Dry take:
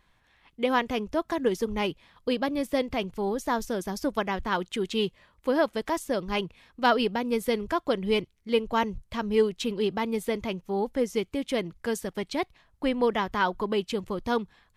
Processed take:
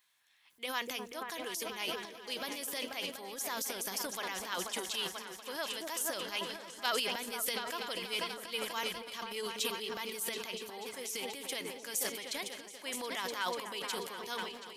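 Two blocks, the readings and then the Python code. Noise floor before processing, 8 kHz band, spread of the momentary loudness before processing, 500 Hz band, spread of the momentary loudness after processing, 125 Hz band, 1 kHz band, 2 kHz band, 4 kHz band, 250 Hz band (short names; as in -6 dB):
-66 dBFS, +6.0 dB, 6 LU, -14.5 dB, 6 LU, -18.5 dB, -10.5 dB, -5.5 dB, -0.5 dB, -18.0 dB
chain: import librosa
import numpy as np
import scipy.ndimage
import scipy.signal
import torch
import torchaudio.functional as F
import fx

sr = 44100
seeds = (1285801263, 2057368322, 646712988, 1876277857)

y = np.diff(x, prepend=0.0)
y = fx.echo_opening(y, sr, ms=243, hz=400, octaves=2, feedback_pct=70, wet_db=-6)
y = fx.transient(y, sr, attack_db=-1, sustain_db=11)
y = y * 10.0 ** (4.0 / 20.0)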